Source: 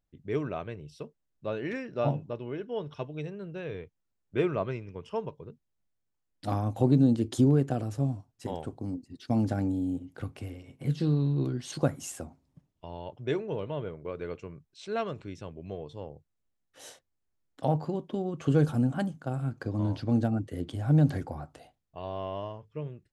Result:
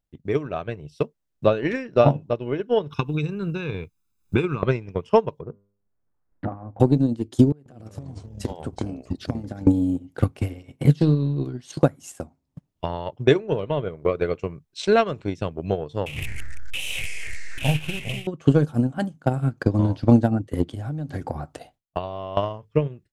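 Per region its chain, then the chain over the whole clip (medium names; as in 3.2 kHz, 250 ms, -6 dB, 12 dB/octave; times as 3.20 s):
2.90–4.63 s: treble shelf 5.8 kHz +7.5 dB + compression 3:1, threshold -37 dBFS + comb 0.8 ms, depth 87%
5.41–6.80 s: low-pass 1.6 kHz 24 dB/octave + compression 8:1, threshold -37 dBFS + de-hum 100.7 Hz, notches 36
7.52–9.67 s: compression 16:1, threshold -39 dBFS + ever faster or slower copies 139 ms, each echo -4 st, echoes 2, each echo -6 dB
16.06–18.27 s: one-bit delta coder 64 kbps, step -33 dBFS + FFT filter 110 Hz 0 dB, 240 Hz -13 dB, 1.7 kHz -17 dB, 2.6 kHz +14 dB, 4.5 kHz -13 dB, 10 kHz -3 dB + ever faster or slower copies 106 ms, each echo -3 st, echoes 3, each echo -6 dB
20.65–22.37 s: gate with hold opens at -47 dBFS, closes at -53 dBFS + compression 8:1, threshold -37 dBFS
whole clip: transient shaper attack +10 dB, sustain -7 dB; level rider gain up to 11 dB; trim -1 dB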